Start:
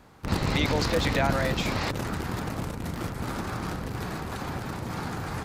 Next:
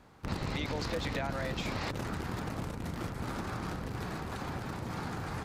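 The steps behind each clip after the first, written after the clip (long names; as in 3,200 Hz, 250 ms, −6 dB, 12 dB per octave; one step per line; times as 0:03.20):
high-shelf EQ 10,000 Hz −6 dB
downward compressor, threshold −26 dBFS, peak gain reduction 7.5 dB
level −4.5 dB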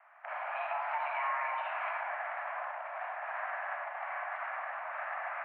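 convolution reverb RT60 0.75 s, pre-delay 25 ms, DRR 0 dB
single-sideband voice off tune +400 Hz 270–2,000 Hz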